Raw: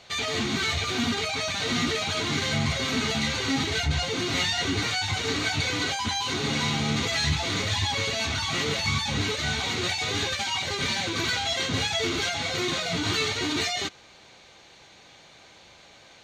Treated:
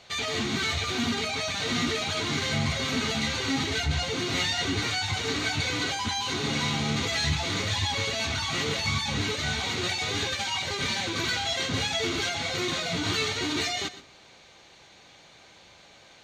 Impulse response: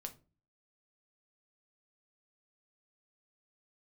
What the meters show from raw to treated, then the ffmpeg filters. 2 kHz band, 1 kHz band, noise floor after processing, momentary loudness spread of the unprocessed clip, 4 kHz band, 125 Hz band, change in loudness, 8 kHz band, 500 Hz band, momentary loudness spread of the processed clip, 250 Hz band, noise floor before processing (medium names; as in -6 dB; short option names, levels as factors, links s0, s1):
-1.5 dB, -1.5 dB, -54 dBFS, 2 LU, -1.5 dB, -1.5 dB, -1.5 dB, -1.5 dB, -1.5 dB, 2 LU, -1.5 dB, -52 dBFS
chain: -filter_complex "[0:a]asplit=2[s0][s1];[1:a]atrim=start_sample=2205,adelay=120[s2];[s1][s2]afir=irnorm=-1:irlink=0,volume=0.282[s3];[s0][s3]amix=inputs=2:normalize=0,volume=0.841"